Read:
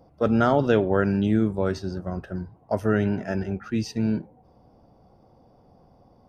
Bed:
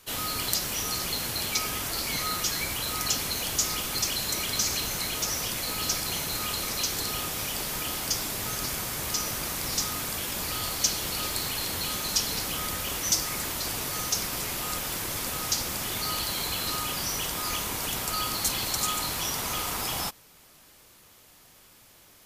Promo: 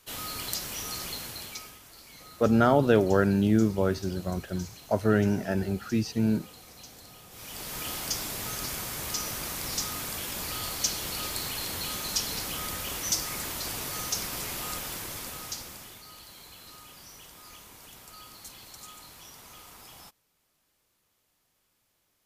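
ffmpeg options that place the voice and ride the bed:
ffmpeg -i stem1.wav -i stem2.wav -filter_complex "[0:a]adelay=2200,volume=-1dB[link_01];[1:a]volume=11.5dB,afade=type=out:start_time=1.06:duration=0.73:silence=0.188365,afade=type=in:start_time=7.29:duration=0.59:silence=0.141254,afade=type=out:start_time=14.66:duration=1.37:silence=0.16788[link_02];[link_01][link_02]amix=inputs=2:normalize=0" out.wav

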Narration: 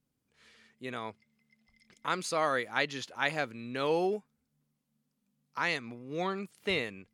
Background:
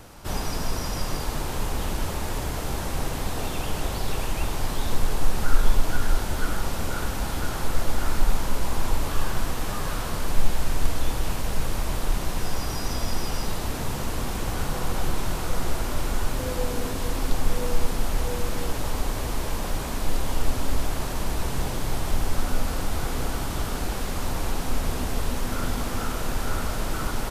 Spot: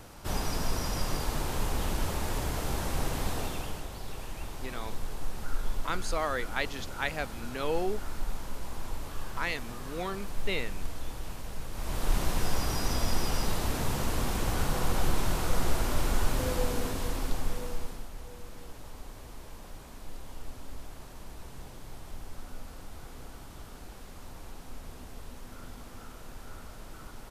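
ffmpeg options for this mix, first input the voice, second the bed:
ffmpeg -i stem1.wav -i stem2.wav -filter_complex "[0:a]adelay=3800,volume=-2dB[link_01];[1:a]volume=8dB,afade=type=out:start_time=3.29:duration=0.57:silence=0.334965,afade=type=in:start_time=11.72:duration=0.46:silence=0.281838,afade=type=out:start_time=16.42:duration=1.67:silence=0.149624[link_02];[link_01][link_02]amix=inputs=2:normalize=0" out.wav

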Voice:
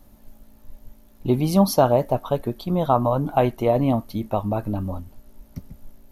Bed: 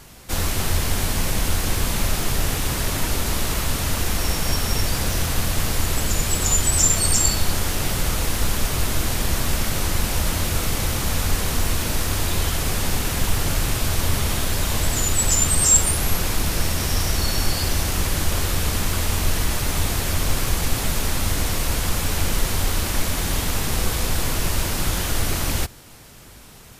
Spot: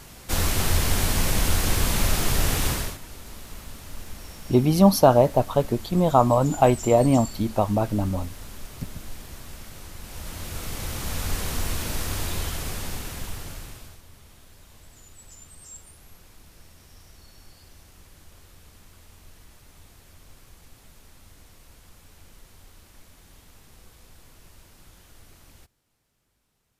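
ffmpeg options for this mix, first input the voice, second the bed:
ffmpeg -i stem1.wav -i stem2.wav -filter_complex "[0:a]adelay=3250,volume=1.5dB[link_01];[1:a]volume=12.5dB,afade=type=out:start_time=2.67:duration=0.31:silence=0.11885,afade=type=in:start_time=9.99:duration=1.37:silence=0.223872,afade=type=out:start_time=12.2:duration=1.81:silence=0.0707946[link_02];[link_01][link_02]amix=inputs=2:normalize=0" out.wav

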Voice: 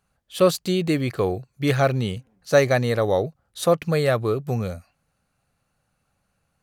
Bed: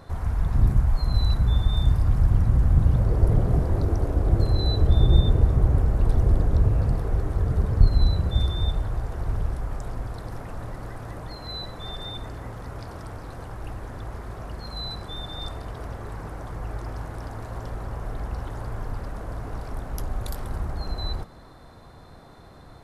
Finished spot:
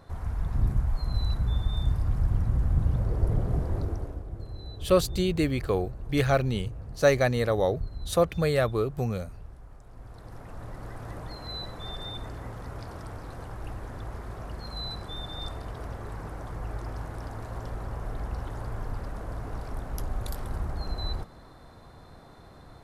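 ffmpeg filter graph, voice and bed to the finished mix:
ffmpeg -i stem1.wav -i stem2.wav -filter_complex "[0:a]adelay=4500,volume=-4dB[link_01];[1:a]volume=9.5dB,afade=type=out:start_time=3.78:duration=0.48:silence=0.251189,afade=type=in:start_time=9.88:duration=1.23:silence=0.16788[link_02];[link_01][link_02]amix=inputs=2:normalize=0" out.wav

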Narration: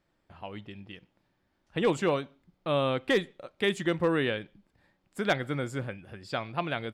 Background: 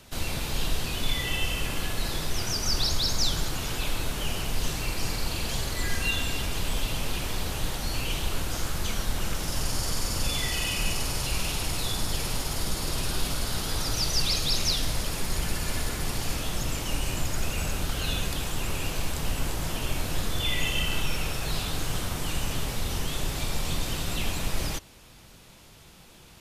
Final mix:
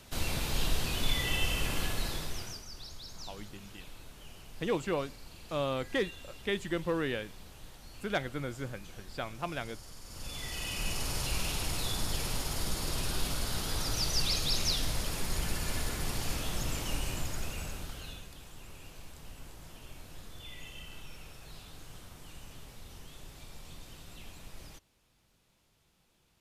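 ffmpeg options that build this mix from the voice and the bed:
ffmpeg -i stem1.wav -i stem2.wav -filter_complex "[0:a]adelay=2850,volume=-5.5dB[link_01];[1:a]volume=13.5dB,afade=type=out:start_time=1.83:duration=0.83:silence=0.125893,afade=type=in:start_time=10.04:duration=1.14:silence=0.158489,afade=type=out:start_time=16.84:duration=1.42:silence=0.177828[link_02];[link_01][link_02]amix=inputs=2:normalize=0" out.wav

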